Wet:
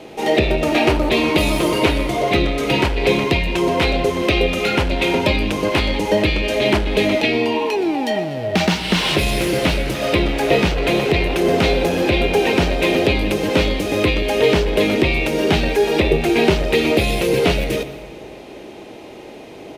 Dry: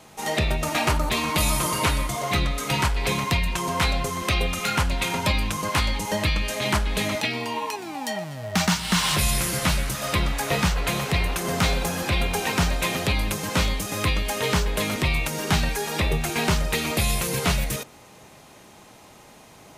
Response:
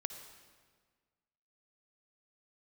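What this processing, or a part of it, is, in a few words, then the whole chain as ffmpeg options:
saturated reverb return: -filter_complex "[0:a]asplit=2[link_01][link_02];[1:a]atrim=start_sample=2205[link_03];[link_02][link_03]afir=irnorm=-1:irlink=0,asoftclip=type=tanh:threshold=-29.5dB,volume=1.5dB[link_04];[link_01][link_04]amix=inputs=2:normalize=0,firequalizer=gain_entry='entry(160,0);entry(340,14);entry(1100,-4);entry(2500,5);entry(7000,-9)':delay=0.05:min_phase=1"

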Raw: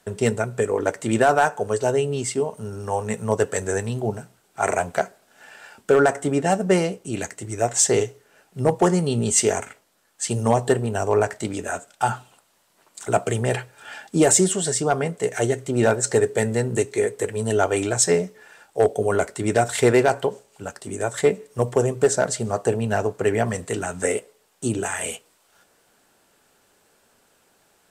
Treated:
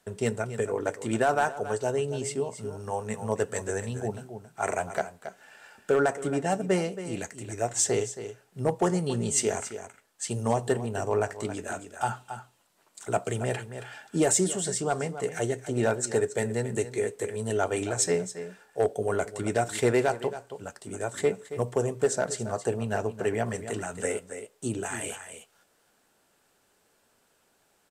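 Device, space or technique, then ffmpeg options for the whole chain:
ducked delay: -filter_complex "[0:a]asplit=3[link_01][link_02][link_03];[link_02]adelay=274,volume=-9dB[link_04];[link_03]apad=whole_len=1242641[link_05];[link_04][link_05]sidechaincompress=threshold=-21dB:ratio=8:attack=41:release=731[link_06];[link_01][link_06]amix=inputs=2:normalize=0,volume=-7dB"

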